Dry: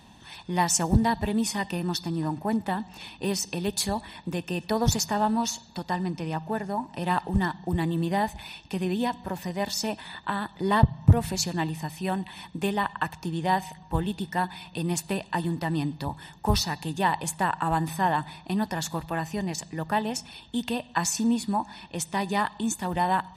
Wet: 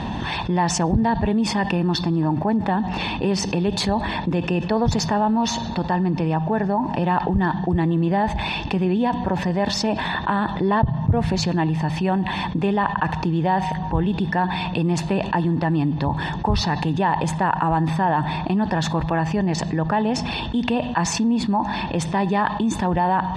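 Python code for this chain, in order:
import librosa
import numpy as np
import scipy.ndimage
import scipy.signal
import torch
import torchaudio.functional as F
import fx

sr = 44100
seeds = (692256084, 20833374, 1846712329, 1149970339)

y = scipy.signal.sosfilt(scipy.signal.butter(2, 4000.0, 'lowpass', fs=sr, output='sos'), x)
y = fx.high_shelf(y, sr, hz=2000.0, db=-9.0)
y = fx.env_flatten(y, sr, amount_pct=70)
y = F.gain(torch.from_numpy(y), -4.0).numpy()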